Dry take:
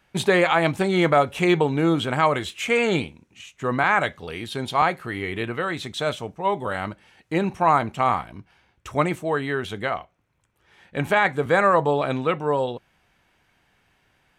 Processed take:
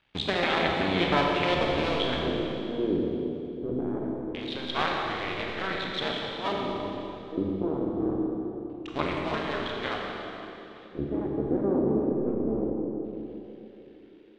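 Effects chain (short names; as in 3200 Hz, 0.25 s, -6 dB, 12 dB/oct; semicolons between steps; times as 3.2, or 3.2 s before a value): cycle switcher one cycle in 2, muted; LFO low-pass square 0.23 Hz 340–3600 Hz; on a send: tape echo 0.166 s, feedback 85%, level -7 dB, low-pass 1000 Hz; on the sum: Schroeder reverb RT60 2.7 s, combs from 28 ms, DRR -0.5 dB; gain -7 dB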